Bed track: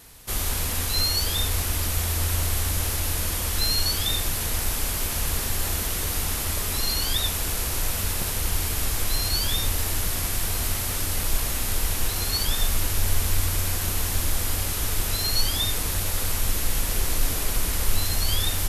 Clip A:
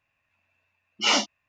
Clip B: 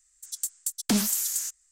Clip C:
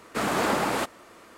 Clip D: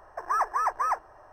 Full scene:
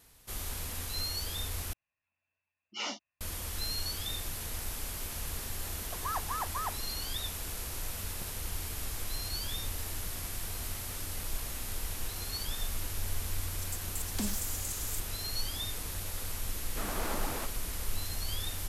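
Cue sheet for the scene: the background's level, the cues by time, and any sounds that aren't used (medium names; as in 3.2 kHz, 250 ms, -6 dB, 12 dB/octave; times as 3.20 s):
bed track -12 dB
1.73 s: replace with A -15.5 dB + spectral gate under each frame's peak -50 dB strong
5.75 s: add D -10 dB
13.29 s: add B -12 dB + chunks repeated in reverse 697 ms, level -1 dB
16.61 s: add C -13 dB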